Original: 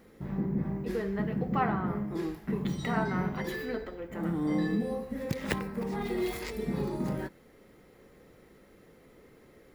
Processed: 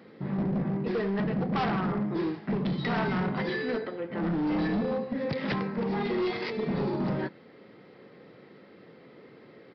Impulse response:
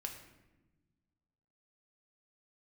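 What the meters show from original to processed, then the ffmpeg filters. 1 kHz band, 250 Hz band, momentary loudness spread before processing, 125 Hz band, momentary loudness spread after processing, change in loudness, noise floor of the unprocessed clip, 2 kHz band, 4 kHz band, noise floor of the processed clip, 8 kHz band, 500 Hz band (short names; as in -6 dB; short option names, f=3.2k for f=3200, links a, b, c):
+2.0 dB, +2.5 dB, 6 LU, +2.0 dB, 4 LU, +3.0 dB, -58 dBFS, +3.5 dB, +5.0 dB, -53 dBFS, under -15 dB, +3.5 dB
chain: -af "highpass=f=120:w=0.5412,highpass=f=120:w=1.3066,aresample=11025,asoftclip=type=hard:threshold=-30.5dB,aresample=44100,volume=5.5dB"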